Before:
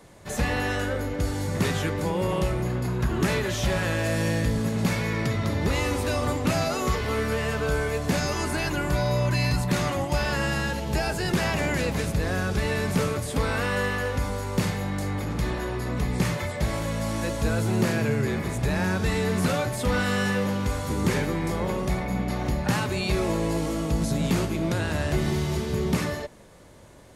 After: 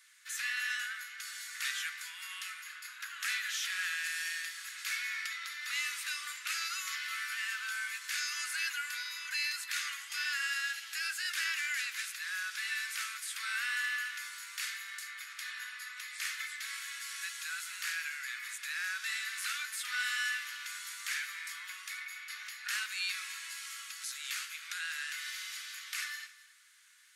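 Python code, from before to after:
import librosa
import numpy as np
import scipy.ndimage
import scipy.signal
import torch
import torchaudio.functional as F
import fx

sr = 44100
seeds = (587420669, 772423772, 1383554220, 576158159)

p1 = scipy.signal.sosfilt(scipy.signal.butter(8, 1400.0, 'highpass', fs=sr, output='sos'), x)
p2 = p1 + fx.echo_single(p1, sr, ms=268, db=-18.0, dry=0)
y = p2 * librosa.db_to_amplitude(-3.0)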